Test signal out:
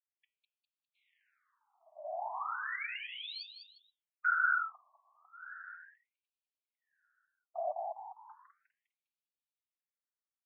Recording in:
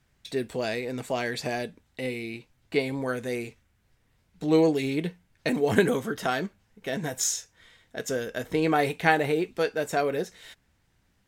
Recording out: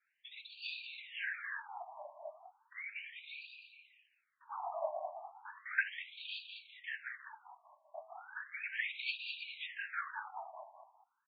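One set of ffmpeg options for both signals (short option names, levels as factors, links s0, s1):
-filter_complex "[0:a]lowshelf=f=160:t=q:w=3:g=10,afftfilt=real='hypot(re,im)*cos(2*PI*random(0))':imag='hypot(re,im)*sin(2*PI*random(1))':win_size=512:overlap=0.75,bandreject=f=108.3:t=h:w=4,bandreject=f=216.6:t=h:w=4,bandreject=f=324.9:t=h:w=4,bandreject=f=433.2:t=h:w=4,bandreject=f=541.5:t=h:w=4,bandreject=f=649.8:t=h:w=4,bandreject=f=758.1:t=h:w=4,bandreject=f=866.4:t=h:w=4,bandreject=f=974.7:t=h:w=4,bandreject=f=1083:t=h:w=4,bandreject=f=1191.3:t=h:w=4,bandreject=f=1299.6:t=h:w=4,bandreject=f=1407.9:t=h:w=4,bandreject=f=1516.2:t=h:w=4,bandreject=f=1624.5:t=h:w=4,bandreject=f=1732.8:t=h:w=4,bandreject=f=1841.1:t=h:w=4,bandreject=f=1949.4:t=h:w=4,bandreject=f=2057.7:t=h:w=4,bandreject=f=2166:t=h:w=4,bandreject=f=2274.3:t=h:w=4,bandreject=f=2382.6:t=h:w=4,bandreject=f=2490.9:t=h:w=4,bandreject=f=2599.2:t=h:w=4,bandreject=f=2707.5:t=h:w=4,bandreject=f=2815.8:t=h:w=4,bandreject=f=2924.1:t=h:w=4,bandreject=f=3032.4:t=h:w=4,bandreject=f=3140.7:t=h:w=4,bandreject=f=3249:t=h:w=4,bandreject=f=3357.3:t=h:w=4,asplit=2[s0][s1];[s1]asplit=4[s2][s3][s4][s5];[s2]adelay=202,afreqshift=99,volume=0.473[s6];[s3]adelay=404,afreqshift=198,volume=0.176[s7];[s4]adelay=606,afreqshift=297,volume=0.0646[s8];[s5]adelay=808,afreqshift=396,volume=0.024[s9];[s6][s7][s8][s9]amix=inputs=4:normalize=0[s10];[s0][s10]amix=inputs=2:normalize=0,afftfilt=real='re*between(b*sr/1024,810*pow(3400/810,0.5+0.5*sin(2*PI*0.35*pts/sr))/1.41,810*pow(3400/810,0.5+0.5*sin(2*PI*0.35*pts/sr))*1.41)':imag='im*between(b*sr/1024,810*pow(3400/810,0.5+0.5*sin(2*PI*0.35*pts/sr))/1.41,810*pow(3400/810,0.5+0.5*sin(2*PI*0.35*pts/sr))*1.41)':win_size=1024:overlap=0.75,volume=1.26"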